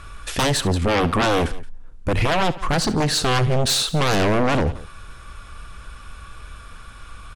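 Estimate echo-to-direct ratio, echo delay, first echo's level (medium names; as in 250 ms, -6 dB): -15.0 dB, 70 ms, -17.0 dB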